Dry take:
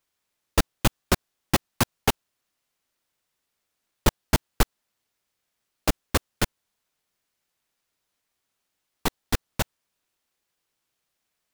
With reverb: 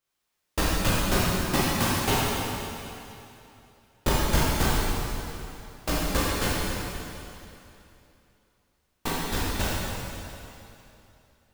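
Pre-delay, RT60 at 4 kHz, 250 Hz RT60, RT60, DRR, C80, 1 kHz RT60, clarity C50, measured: 7 ms, 2.7 s, 2.8 s, 2.9 s, −9.5 dB, −2.5 dB, 2.9 s, −4.5 dB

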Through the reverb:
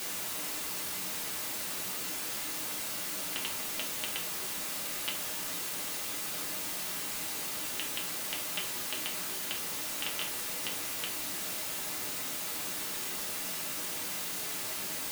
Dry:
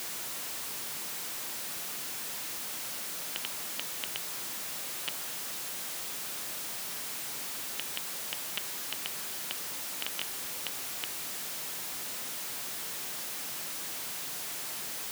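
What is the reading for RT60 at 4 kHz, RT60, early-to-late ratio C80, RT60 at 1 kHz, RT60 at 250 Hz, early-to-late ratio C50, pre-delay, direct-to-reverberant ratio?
0.25 s, 0.45 s, 14.0 dB, 0.40 s, 0.75 s, 9.0 dB, 3 ms, −2.5 dB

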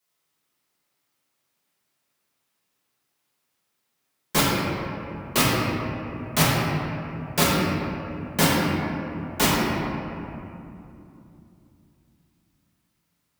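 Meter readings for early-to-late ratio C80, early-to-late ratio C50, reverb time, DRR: −1.0 dB, −2.5 dB, 2.8 s, −8.0 dB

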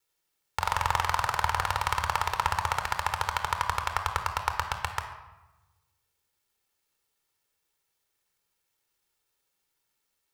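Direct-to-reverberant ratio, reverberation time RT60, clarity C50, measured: 6.0 dB, 1.0 s, 7.5 dB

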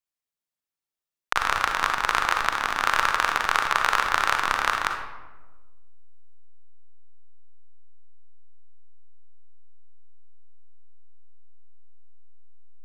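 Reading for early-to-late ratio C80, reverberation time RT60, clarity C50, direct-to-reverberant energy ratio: 7.5 dB, 1.2 s, 5.0 dB, 4.0 dB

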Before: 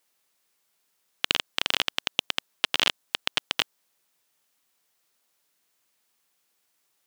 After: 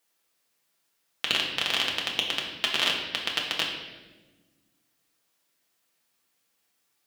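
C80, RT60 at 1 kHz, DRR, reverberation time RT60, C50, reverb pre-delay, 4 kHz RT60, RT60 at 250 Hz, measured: 6.0 dB, 1.0 s, −2.0 dB, 1.3 s, 4.0 dB, 4 ms, 1.0 s, 2.1 s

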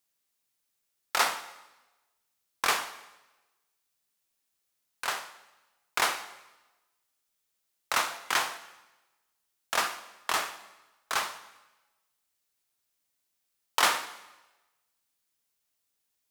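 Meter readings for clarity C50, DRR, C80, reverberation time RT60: 13.5 dB, 11.0 dB, 15.5 dB, 1.1 s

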